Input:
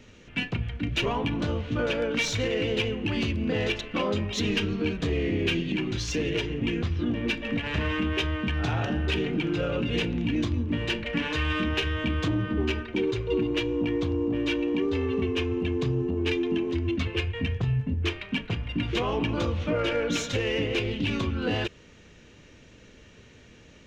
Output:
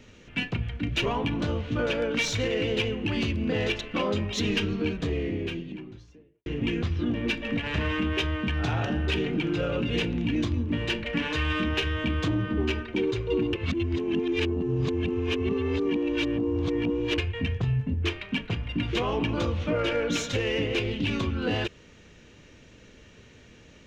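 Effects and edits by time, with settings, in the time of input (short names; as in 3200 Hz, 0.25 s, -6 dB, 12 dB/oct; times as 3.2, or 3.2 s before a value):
4.65–6.46 studio fade out
13.53–17.18 reverse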